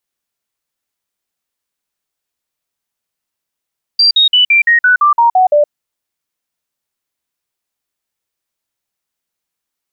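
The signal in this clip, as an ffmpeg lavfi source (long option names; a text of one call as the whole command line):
ffmpeg -f lavfi -i "aevalsrc='0.531*clip(min(mod(t,0.17),0.12-mod(t,0.17))/0.005,0,1)*sin(2*PI*4720*pow(2,-floor(t/0.17)/3)*mod(t,0.17))':duration=1.7:sample_rate=44100" out.wav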